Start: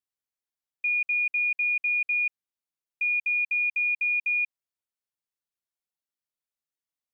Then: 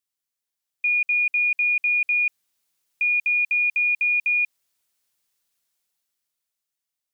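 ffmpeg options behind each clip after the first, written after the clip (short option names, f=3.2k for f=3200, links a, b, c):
-af "highshelf=f=2.3k:g=8,dynaudnorm=f=210:g=13:m=12dB,alimiter=limit=-17.5dB:level=0:latency=1:release=12"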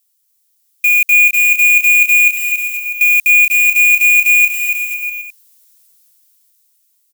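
-filter_complex "[0:a]acrusher=bits=4:mode=log:mix=0:aa=0.000001,crystalizer=i=8:c=0,asplit=2[a][b];[b]aecho=0:1:280|490|647.5|765.6|854.2:0.631|0.398|0.251|0.158|0.1[c];[a][c]amix=inputs=2:normalize=0"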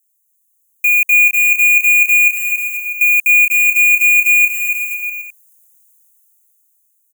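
-filter_complex "[0:a]acrossover=split=4100|7700[a][b][c];[a]aeval=exprs='val(0)*gte(abs(val(0)),0.0178)':c=same[d];[d][b][c]amix=inputs=3:normalize=0,asuperstop=centerf=4200:order=20:qfactor=1.3,volume=-1dB"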